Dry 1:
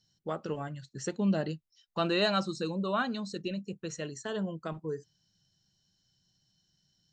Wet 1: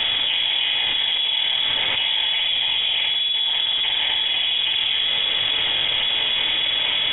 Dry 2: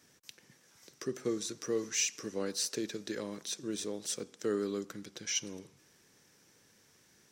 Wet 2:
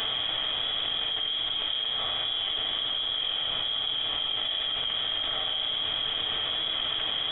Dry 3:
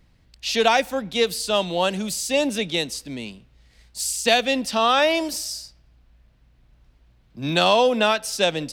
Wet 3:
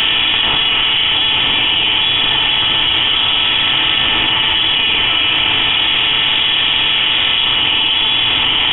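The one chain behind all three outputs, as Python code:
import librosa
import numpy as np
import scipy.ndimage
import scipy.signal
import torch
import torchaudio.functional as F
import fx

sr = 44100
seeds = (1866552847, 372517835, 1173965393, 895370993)

y = fx.bin_compress(x, sr, power=0.2)
y = scipy.signal.sosfilt(scipy.signal.butter(2, 100.0, 'highpass', fs=sr, output='sos'), y)
y = fx.high_shelf(y, sr, hz=2200.0, db=-7.0)
y = fx.notch(y, sr, hz=1300.0, q=15.0)
y = fx.quant_dither(y, sr, seeds[0], bits=6, dither='none')
y = fx.rev_fdn(y, sr, rt60_s=0.93, lf_ratio=1.55, hf_ratio=0.85, size_ms=26.0, drr_db=-4.0)
y = fx.freq_invert(y, sr, carrier_hz=3600)
y = fx.env_flatten(y, sr, amount_pct=100)
y = y * librosa.db_to_amplitude(-11.5)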